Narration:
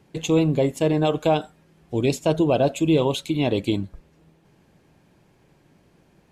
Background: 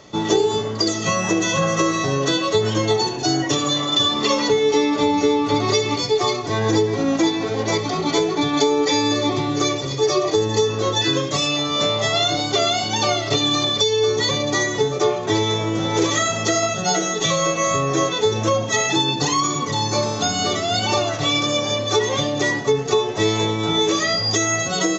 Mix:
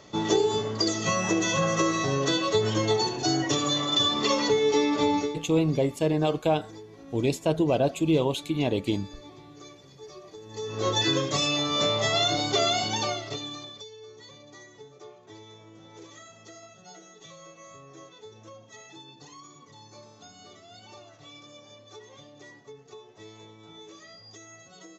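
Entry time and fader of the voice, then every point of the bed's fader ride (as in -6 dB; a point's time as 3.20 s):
5.20 s, -4.0 dB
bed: 5.16 s -5.5 dB
5.49 s -27 dB
10.41 s -27 dB
10.86 s -5 dB
12.86 s -5 dB
13.98 s -28.5 dB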